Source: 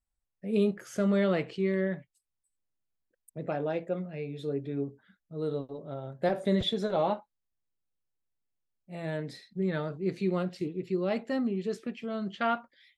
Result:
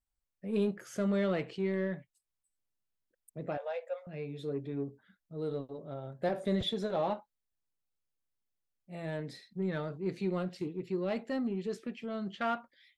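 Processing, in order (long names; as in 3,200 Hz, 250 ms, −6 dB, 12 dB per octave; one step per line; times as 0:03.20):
0:03.57–0:04.07: Chebyshev high-pass filter 480 Hz, order 8
in parallel at −8 dB: soft clipping −31.5 dBFS, distortion −7 dB
on the sum: level −5.5 dB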